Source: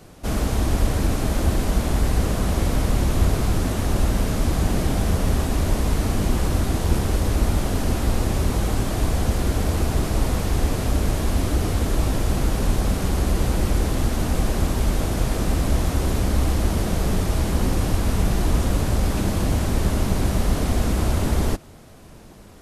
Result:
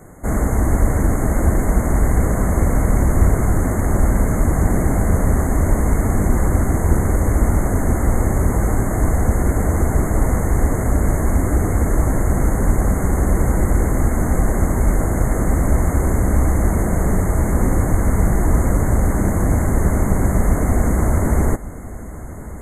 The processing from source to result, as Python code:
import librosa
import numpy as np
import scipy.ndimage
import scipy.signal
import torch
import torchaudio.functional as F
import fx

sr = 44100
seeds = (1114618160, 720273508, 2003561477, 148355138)

p1 = fx.brickwall_bandstop(x, sr, low_hz=2200.0, high_hz=6300.0)
p2 = p1 + fx.echo_single(p1, sr, ms=1152, db=-16.0, dry=0)
p3 = fx.doppler_dist(p2, sr, depth_ms=0.16)
y = F.gain(torch.from_numpy(p3), 4.5).numpy()